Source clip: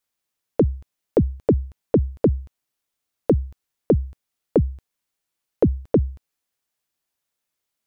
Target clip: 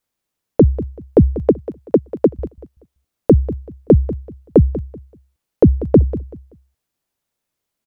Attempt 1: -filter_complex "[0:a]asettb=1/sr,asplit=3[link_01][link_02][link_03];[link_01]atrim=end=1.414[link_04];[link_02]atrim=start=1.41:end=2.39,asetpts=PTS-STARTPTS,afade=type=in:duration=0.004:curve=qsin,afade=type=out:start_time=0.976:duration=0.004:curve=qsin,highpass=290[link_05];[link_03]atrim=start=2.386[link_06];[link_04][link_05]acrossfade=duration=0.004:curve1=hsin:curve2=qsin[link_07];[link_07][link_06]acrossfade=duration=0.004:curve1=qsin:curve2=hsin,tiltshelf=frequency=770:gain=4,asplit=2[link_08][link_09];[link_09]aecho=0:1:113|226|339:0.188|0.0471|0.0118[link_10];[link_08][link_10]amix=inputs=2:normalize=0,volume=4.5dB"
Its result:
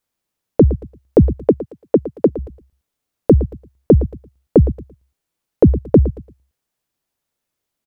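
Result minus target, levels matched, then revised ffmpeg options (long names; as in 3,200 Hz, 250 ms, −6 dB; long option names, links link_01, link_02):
echo 78 ms early
-filter_complex "[0:a]asettb=1/sr,asplit=3[link_01][link_02][link_03];[link_01]atrim=end=1.414[link_04];[link_02]atrim=start=1.41:end=2.39,asetpts=PTS-STARTPTS,afade=type=in:duration=0.004:curve=qsin,afade=type=out:start_time=0.976:duration=0.004:curve=qsin,highpass=290[link_05];[link_03]atrim=start=2.386[link_06];[link_04][link_05]acrossfade=duration=0.004:curve1=hsin:curve2=qsin[link_07];[link_07][link_06]acrossfade=duration=0.004:curve1=qsin:curve2=hsin,tiltshelf=frequency=770:gain=4,asplit=2[link_08][link_09];[link_09]aecho=0:1:191|382|573:0.188|0.0471|0.0118[link_10];[link_08][link_10]amix=inputs=2:normalize=0,volume=4.5dB"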